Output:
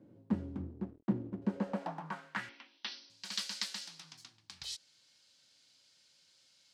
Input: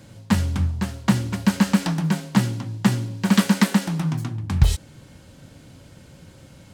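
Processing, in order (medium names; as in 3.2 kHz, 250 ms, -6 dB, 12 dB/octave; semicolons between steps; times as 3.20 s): 0.62–1.42 s: hysteresis with a dead band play -25 dBFS; band-pass sweep 330 Hz -> 4.7 kHz, 1.40–3.01 s; 2.49–3.10 s: brick-wall FIR band-pass 210–6100 Hz; trim -4.5 dB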